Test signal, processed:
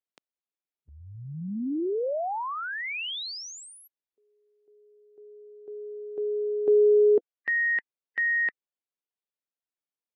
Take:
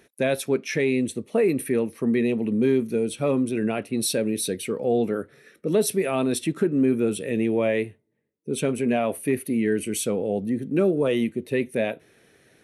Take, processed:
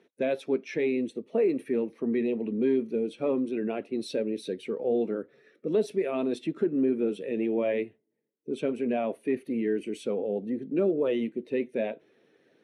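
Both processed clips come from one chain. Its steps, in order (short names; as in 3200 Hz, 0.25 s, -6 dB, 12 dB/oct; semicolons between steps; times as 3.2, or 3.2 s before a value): bin magnitudes rounded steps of 15 dB; BPF 290–2800 Hz; bell 1500 Hz -8.5 dB 2.4 oct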